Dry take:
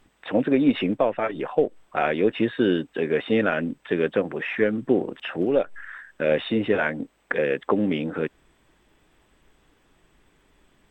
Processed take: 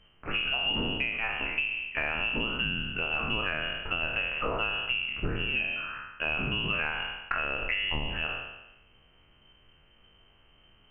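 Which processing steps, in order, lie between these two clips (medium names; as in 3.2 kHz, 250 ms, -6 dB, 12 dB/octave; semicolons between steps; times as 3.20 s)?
spectral sustain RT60 0.99 s; frequency inversion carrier 3.1 kHz; tilt EQ -4 dB/octave; compression, threshold -24 dBFS, peak gain reduction 7 dB; trim -2 dB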